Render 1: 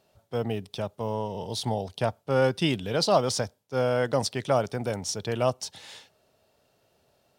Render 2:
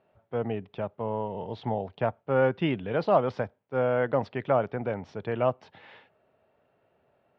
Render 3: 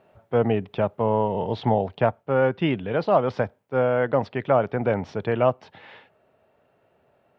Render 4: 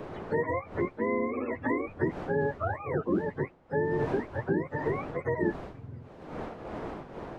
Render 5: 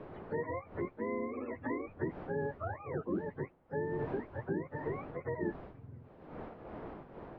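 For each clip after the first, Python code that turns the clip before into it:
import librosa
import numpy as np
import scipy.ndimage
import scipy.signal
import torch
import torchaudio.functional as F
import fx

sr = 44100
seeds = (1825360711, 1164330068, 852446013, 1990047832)

y1 = scipy.signal.sosfilt(scipy.signal.butter(4, 2400.0, 'lowpass', fs=sr, output='sos'), x)
y1 = fx.low_shelf(y1, sr, hz=81.0, db=-9.5)
y2 = fx.rider(y1, sr, range_db=4, speed_s=0.5)
y2 = y2 * 10.0 ** (5.5 / 20.0)
y3 = fx.octave_mirror(y2, sr, pivot_hz=470.0)
y3 = fx.dmg_wind(y3, sr, seeds[0], corner_hz=630.0, level_db=-40.0)
y3 = fx.band_squash(y3, sr, depth_pct=70)
y3 = y3 * 10.0 ** (-6.5 / 20.0)
y4 = fx.air_absorb(y3, sr, metres=270.0)
y4 = y4 * 10.0 ** (-7.0 / 20.0)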